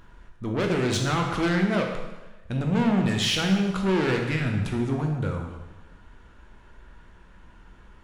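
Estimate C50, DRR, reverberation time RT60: 4.0 dB, 1.5 dB, 1.1 s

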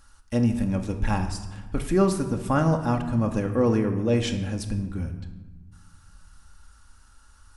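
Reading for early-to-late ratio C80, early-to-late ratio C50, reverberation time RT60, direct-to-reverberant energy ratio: 11.5 dB, 9.5 dB, 1.3 s, 4.5 dB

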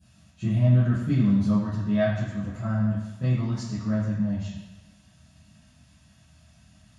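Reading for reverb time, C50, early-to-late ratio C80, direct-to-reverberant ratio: 1.1 s, 0.5 dB, 4.0 dB, -14.0 dB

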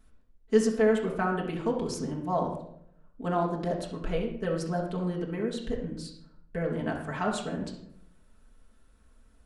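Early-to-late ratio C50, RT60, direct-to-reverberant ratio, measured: 5.5 dB, 0.70 s, -3.5 dB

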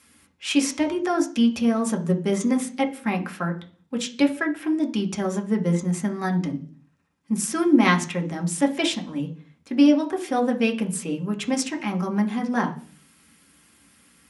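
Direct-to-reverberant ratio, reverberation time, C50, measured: 2.0 dB, 0.45 s, 14.0 dB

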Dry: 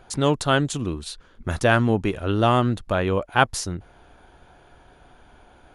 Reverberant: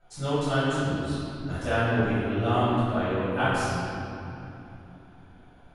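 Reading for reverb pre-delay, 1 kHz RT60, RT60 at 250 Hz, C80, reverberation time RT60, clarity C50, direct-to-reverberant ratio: 3 ms, 2.8 s, 4.2 s, -2.5 dB, 2.9 s, -4.5 dB, -17.5 dB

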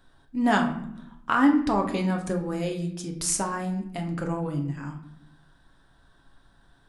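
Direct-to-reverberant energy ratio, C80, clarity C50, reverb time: 2.0 dB, 12.0 dB, 9.0 dB, 0.75 s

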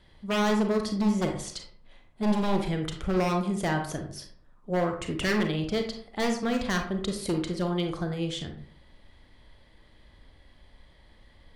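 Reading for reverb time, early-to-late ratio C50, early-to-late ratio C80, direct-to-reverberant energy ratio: 0.55 s, 7.0 dB, 11.0 dB, 4.0 dB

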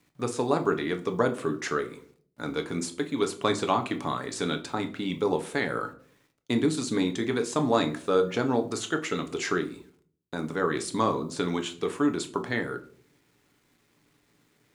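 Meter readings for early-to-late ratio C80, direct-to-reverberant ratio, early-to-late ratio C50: 19.0 dB, 5.5 dB, 14.5 dB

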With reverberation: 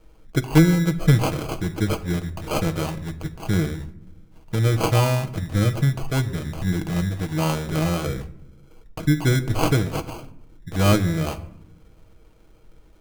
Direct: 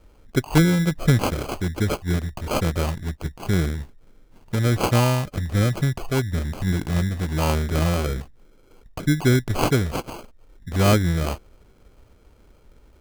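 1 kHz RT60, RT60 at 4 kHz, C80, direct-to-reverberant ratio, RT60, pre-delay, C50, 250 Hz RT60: 0.65 s, 0.45 s, 18.0 dB, 6.5 dB, 0.75 s, 6 ms, 15.0 dB, 1.4 s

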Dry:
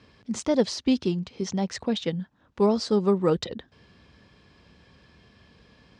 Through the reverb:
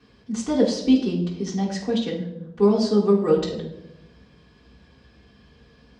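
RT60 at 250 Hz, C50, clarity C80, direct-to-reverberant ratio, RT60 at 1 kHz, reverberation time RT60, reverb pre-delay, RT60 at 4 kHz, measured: 1.2 s, 6.0 dB, 9.5 dB, -9.5 dB, 0.70 s, 0.95 s, 3 ms, 0.55 s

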